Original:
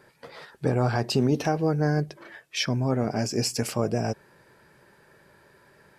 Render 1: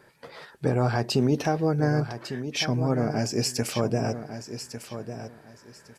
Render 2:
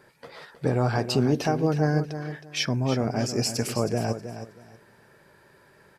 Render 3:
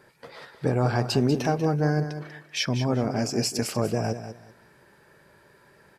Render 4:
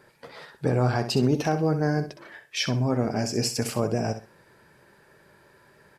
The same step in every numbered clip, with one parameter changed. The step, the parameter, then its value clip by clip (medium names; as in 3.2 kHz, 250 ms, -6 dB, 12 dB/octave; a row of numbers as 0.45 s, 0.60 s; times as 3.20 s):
feedback delay, time: 1151 ms, 318 ms, 192 ms, 64 ms